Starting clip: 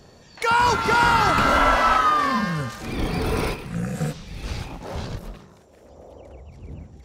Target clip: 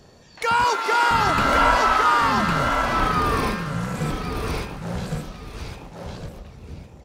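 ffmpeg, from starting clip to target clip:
ffmpeg -i in.wav -filter_complex "[0:a]asettb=1/sr,asplit=3[link_01][link_02][link_03];[link_01]atrim=end=0.644[link_04];[link_02]atrim=start=0.64:end=1.11,asetpts=PTS-STARTPTS,afade=type=in:duration=0.004:curve=qsin,afade=type=out:start_time=0.466:duration=0.004:curve=qsin,highpass=frequency=350:width=0.5412,highpass=frequency=350:width=1.3066[link_05];[link_03]atrim=start=1.106[link_06];[link_04][link_05]acrossfade=duration=0.004:curve1=hsin:curve2=qsin[link_07];[link_07][link_06]acrossfade=duration=0.004:curve1=qsin:curve2=hsin,asplit=2[link_08][link_09];[link_09]aecho=0:1:1107|2214|3321:0.668|0.14|0.0295[link_10];[link_08][link_10]amix=inputs=2:normalize=0,volume=-1dB" out.wav

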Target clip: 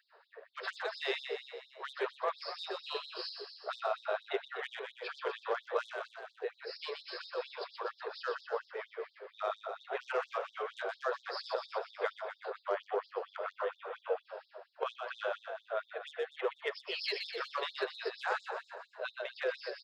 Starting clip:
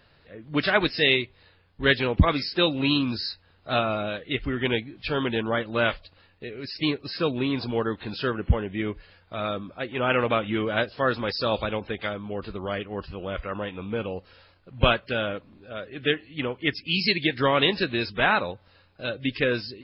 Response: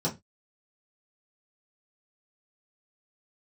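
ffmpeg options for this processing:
-filter_complex "[0:a]highshelf=frequency=1800:width_type=q:width=1.5:gain=-11,alimiter=limit=-16dB:level=0:latency=1:release=393,aeval=exprs='0.158*(cos(1*acos(clip(val(0)/0.158,-1,1)))-cos(1*PI/2))+0.00282*(cos(6*acos(clip(val(0)/0.158,-1,1)))-cos(6*PI/2))':channel_layout=same,acrossover=split=180|3000[link_01][link_02][link_03];[link_02]acompressor=threshold=-31dB:ratio=6[link_04];[link_01][link_04][link_03]amix=inputs=3:normalize=0,asplit=9[link_05][link_06][link_07][link_08][link_09][link_10][link_11][link_12][link_13];[link_06]adelay=123,afreqshift=30,volume=-6dB[link_14];[link_07]adelay=246,afreqshift=60,volume=-10.3dB[link_15];[link_08]adelay=369,afreqshift=90,volume=-14.6dB[link_16];[link_09]adelay=492,afreqshift=120,volume=-18.9dB[link_17];[link_10]adelay=615,afreqshift=150,volume=-23.2dB[link_18];[link_11]adelay=738,afreqshift=180,volume=-27.5dB[link_19];[link_12]adelay=861,afreqshift=210,volume=-31.8dB[link_20];[link_13]adelay=984,afreqshift=240,volume=-36.1dB[link_21];[link_05][link_14][link_15][link_16][link_17][link_18][link_19][link_20][link_21]amix=inputs=9:normalize=0,asplit=2[link_22][link_23];[1:a]atrim=start_sample=2205,lowpass=2800[link_24];[link_23][link_24]afir=irnorm=-1:irlink=0,volume=-19dB[link_25];[link_22][link_25]amix=inputs=2:normalize=0,afftfilt=real='re*gte(b*sr/1024,350*pow(3500/350,0.5+0.5*sin(2*PI*4.3*pts/sr)))':imag='im*gte(b*sr/1024,350*pow(3500/350,0.5+0.5*sin(2*PI*4.3*pts/sr)))':win_size=1024:overlap=0.75,volume=1dB"

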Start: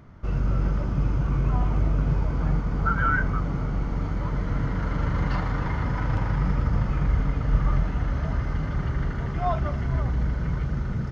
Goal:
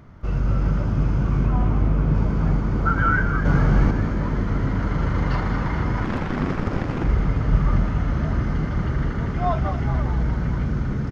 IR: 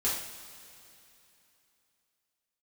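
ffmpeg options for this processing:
-filter_complex "[0:a]asettb=1/sr,asplit=3[link_01][link_02][link_03];[link_01]atrim=end=1.464[link_04];[link_02]atrim=start=1.46:end=2.15,asetpts=PTS-STARTPTS,afade=type=in:duration=0.004:curve=qsin,afade=type=out:start_time=0.686:duration=0.004:curve=qsin,lowpass=frequency=3600:poles=1[link_05];[link_03]atrim=start=2.146[link_06];[link_04][link_05]acrossfade=duration=0.004:curve1=hsin:curve2=qsin[link_07];[link_07][link_06]acrossfade=duration=0.004:curve1=qsin:curve2=hsin,asettb=1/sr,asplit=3[link_08][link_09][link_10];[link_08]atrim=end=3.454[link_11];[link_09]atrim=start=3.45:end=3.91,asetpts=PTS-STARTPTS,afade=type=in:duration=0.004:curve=qsin,afade=type=out:start_time=0.456:duration=0.004:curve=qsin,acontrast=85[link_12];[link_10]atrim=start=3.906[link_13];[link_11][link_12]acrossfade=duration=0.004:curve1=hsin:curve2=qsin[link_14];[link_14][link_13]acrossfade=duration=0.004:curve1=qsin:curve2=hsin,asettb=1/sr,asplit=3[link_15][link_16][link_17];[link_15]atrim=end=6.044[link_18];[link_16]atrim=start=6.04:end=7.04,asetpts=PTS-STARTPTS,afade=type=in:duration=0.004:curve=qsin,afade=type=out:start_time=0.996:duration=0.004:curve=qsin,aeval=exprs='0.251*(cos(1*acos(clip(val(0)/0.251,-1,1)))-cos(1*PI/2))+0.0891*(cos(3*acos(clip(val(0)/0.251,-1,1)))-cos(3*PI/2))+0.0398*(cos(7*acos(clip(val(0)/0.251,-1,1)))-cos(7*PI/2))':channel_layout=same[link_19];[link_17]atrim=start=7.036[link_20];[link_18][link_19]acrossfade=duration=0.004:curve1=hsin:curve2=qsin[link_21];[link_21][link_20]acrossfade=duration=0.004:curve1=qsin:curve2=hsin,asplit=9[link_22][link_23][link_24][link_25][link_26][link_27][link_28][link_29][link_30];[link_23]adelay=213,afreqshift=55,volume=-10dB[link_31];[link_24]adelay=426,afreqshift=110,volume=-14dB[link_32];[link_25]adelay=639,afreqshift=165,volume=-18dB[link_33];[link_26]adelay=852,afreqshift=220,volume=-22dB[link_34];[link_27]adelay=1065,afreqshift=275,volume=-26.1dB[link_35];[link_28]adelay=1278,afreqshift=330,volume=-30.1dB[link_36];[link_29]adelay=1491,afreqshift=385,volume=-34.1dB[link_37];[link_30]adelay=1704,afreqshift=440,volume=-38.1dB[link_38];[link_22][link_31][link_32][link_33][link_34][link_35][link_36][link_37][link_38]amix=inputs=9:normalize=0,volume=2.5dB"

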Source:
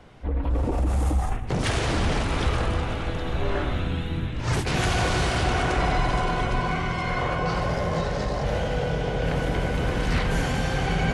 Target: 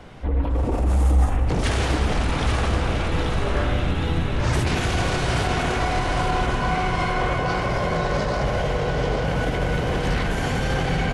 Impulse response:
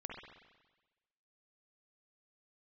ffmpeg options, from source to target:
-filter_complex "[0:a]alimiter=limit=-22.5dB:level=0:latency=1:release=88,aecho=1:1:833|1666|2499|3332|4165:0.531|0.239|0.108|0.0484|0.0218,asplit=2[link_01][link_02];[1:a]atrim=start_sample=2205[link_03];[link_02][link_03]afir=irnorm=-1:irlink=0,volume=0dB[link_04];[link_01][link_04]amix=inputs=2:normalize=0,volume=3dB"

